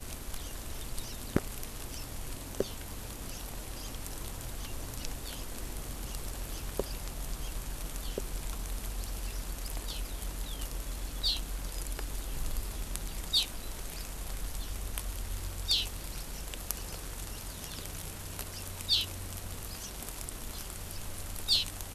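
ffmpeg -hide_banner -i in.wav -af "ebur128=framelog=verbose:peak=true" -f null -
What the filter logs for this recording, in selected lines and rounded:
Integrated loudness:
  I:         -36.9 LUFS
  Threshold: -46.9 LUFS
Loudness range:
  LRA:         6.4 LU
  Threshold: -57.2 LUFS
  LRA low:   -40.5 LUFS
  LRA high:  -34.2 LUFS
True peak:
  Peak:       -7.6 dBFS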